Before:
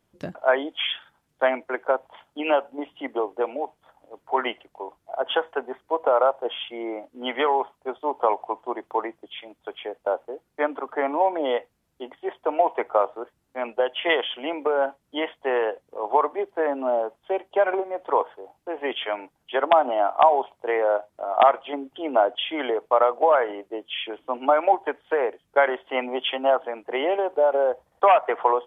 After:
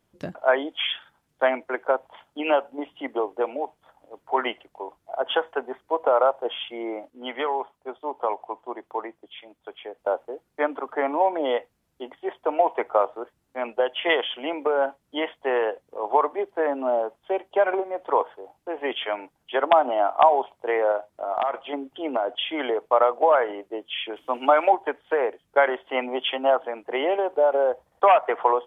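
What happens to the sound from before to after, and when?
7.1–9.98 gain -4.5 dB
20.91–22.77 compressor 10:1, threshold -19 dBFS
24.16–24.7 high shelf 2100 Hz +10.5 dB

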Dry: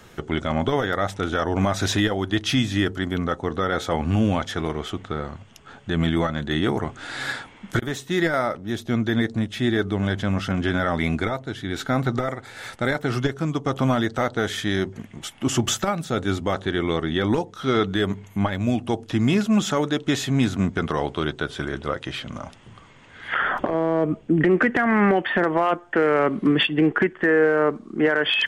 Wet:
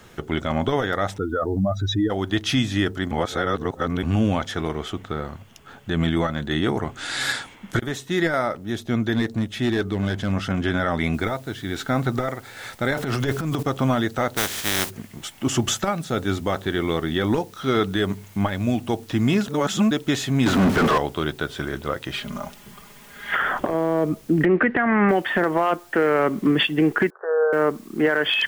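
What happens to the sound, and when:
1.18–2.1 spectral contrast raised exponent 2.7
3.11–4.03 reverse
6.96–7.54 high shelf 2300 Hz -> 3500 Hz +11.5 dB
9.12–10.32 hard clip -15.5 dBFS
11.14 noise floor step -67 dB -53 dB
12.93–13.63 transient shaper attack -9 dB, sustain +11 dB
14.36–14.89 spectral contrast lowered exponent 0.33
19.48–19.91 reverse
20.46–20.98 overdrive pedal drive 39 dB, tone 1300 Hz, clips at -9.5 dBFS
22.12–23.36 comb 4.9 ms, depth 82%
24.45–25.09 LPF 3000 Hz 24 dB/oct
27.1–27.53 Chebyshev band-pass 420–1500 Hz, order 5

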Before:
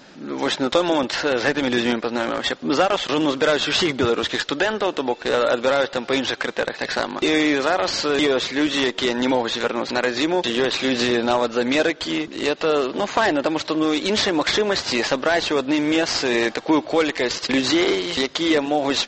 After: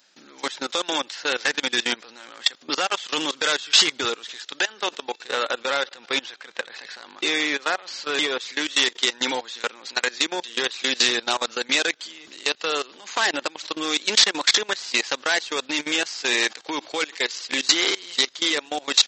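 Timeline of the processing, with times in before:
5.27–8.41 LPF 3200 Hz 6 dB/oct
whole clip: dynamic EQ 630 Hz, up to -6 dB, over -38 dBFS, Q 5.7; level quantiser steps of 21 dB; tilt +4.5 dB/oct; gain -1 dB

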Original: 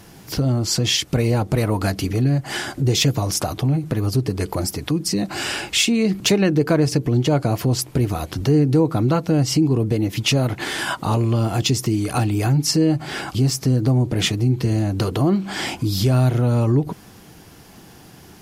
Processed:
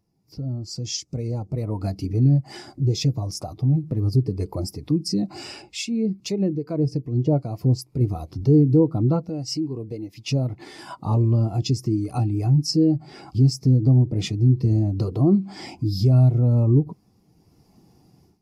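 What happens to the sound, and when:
0.78–1.51 bell 6600 Hz +8 dB
5.62–8.01 harmonic tremolo 2.4 Hz, depth 50%, crossover 930 Hz
9.29–10.28 low shelf 440 Hz -10.5 dB
whole clip: thirty-one-band EQ 1600 Hz -10 dB, 3150 Hz -6 dB, 5000 Hz +4 dB; AGC gain up to 11.5 dB; spectral expander 1.5:1; gain -7 dB

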